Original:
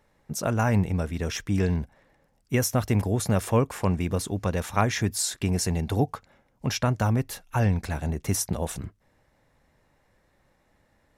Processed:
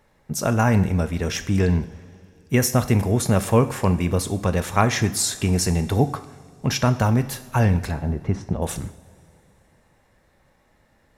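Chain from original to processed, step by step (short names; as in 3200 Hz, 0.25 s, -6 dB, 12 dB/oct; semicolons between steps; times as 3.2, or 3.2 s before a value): 7.91–8.62 tape spacing loss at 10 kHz 39 dB; two-slope reverb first 0.64 s, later 3.2 s, from -17 dB, DRR 9.5 dB; gain +4.5 dB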